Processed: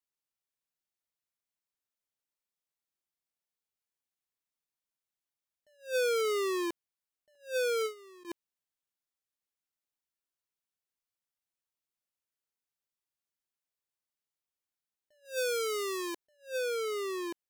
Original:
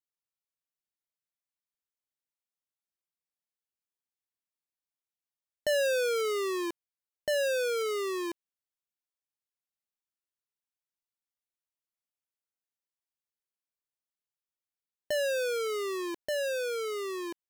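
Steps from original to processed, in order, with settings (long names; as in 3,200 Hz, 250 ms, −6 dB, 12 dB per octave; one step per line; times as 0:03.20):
0:07.35–0:08.25: noise gate with hold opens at −29 dBFS
0:15.25–0:16.16: bass and treble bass −12 dB, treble +5 dB
level that may rise only so fast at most 220 dB per second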